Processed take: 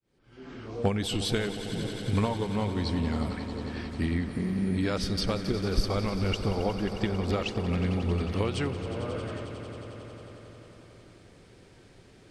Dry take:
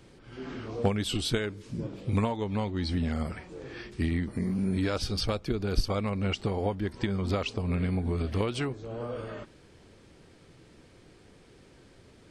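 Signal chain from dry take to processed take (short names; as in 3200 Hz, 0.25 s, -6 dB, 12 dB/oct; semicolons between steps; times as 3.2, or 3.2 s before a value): opening faded in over 0.88 s; swelling echo 90 ms, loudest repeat 5, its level -15 dB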